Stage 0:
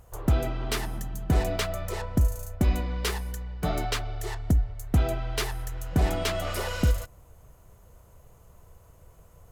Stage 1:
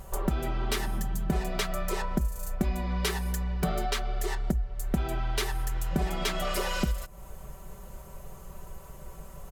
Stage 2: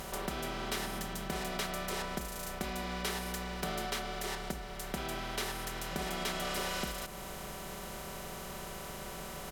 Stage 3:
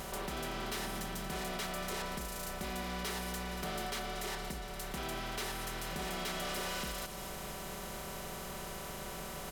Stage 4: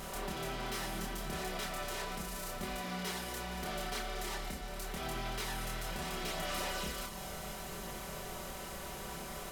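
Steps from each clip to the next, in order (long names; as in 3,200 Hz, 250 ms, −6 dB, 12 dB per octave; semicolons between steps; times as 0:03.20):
comb filter 5.2 ms, depth 91%; downward compressor 4 to 1, threshold −35 dBFS, peak gain reduction 16 dB; level +7.5 dB
compressor on every frequency bin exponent 0.4; low-shelf EQ 240 Hz −11 dB; level −8.5 dB
delay with a high-pass on its return 233 ms, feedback 70%, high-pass 4,000 Hz, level −12 dB; gain into a clipping stage and back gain 34.5 dB
multi-voice chorus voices 2, 0.38 Hz, delay 27 ms, depth 4.1 ms; level +2.5 dB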